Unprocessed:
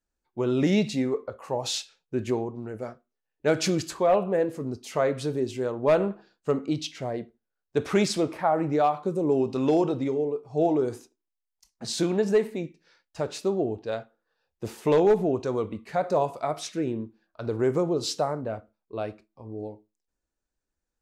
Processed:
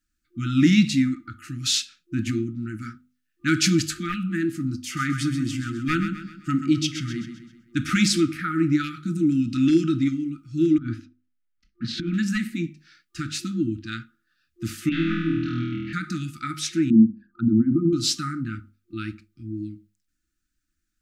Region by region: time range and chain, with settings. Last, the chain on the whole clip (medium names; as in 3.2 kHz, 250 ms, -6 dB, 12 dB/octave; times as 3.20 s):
4.81–7.90 s: band-stop 4 kHz, Q 11 + feedback delay 130 ms, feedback 45%, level -9.5 dB
10.78–12.14 s: distance through air 330 m + compressor with a negative ratio -29 dBFS, ratio -0.5 + tape noise reduction on one side only decoder only
14.89–15.93 s: four-pole ladder low-pass 3.9 kHz, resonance 35% + flutter echo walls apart 4.2 m, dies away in 1.3 s
16.90–17.93 s: resonances exaggerated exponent 2 + small resonant body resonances 210/710 Hz, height 15 dB, ringing for 50 ms
whole clip: FFT band-reject 350–1200 Hz; hum notches 50/100/150/200/250 Hz; trim +7.5 dB